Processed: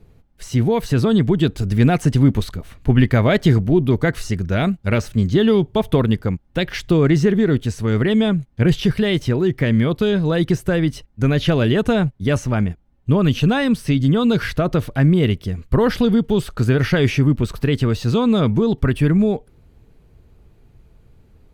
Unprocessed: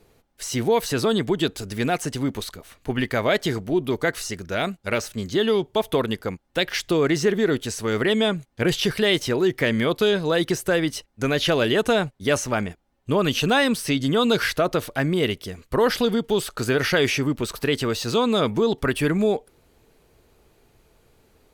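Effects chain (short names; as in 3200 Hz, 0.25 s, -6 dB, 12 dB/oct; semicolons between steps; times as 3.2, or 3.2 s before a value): vocal rider 2 s; tone controls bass +15 dB, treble -6 dB; gain -1 dB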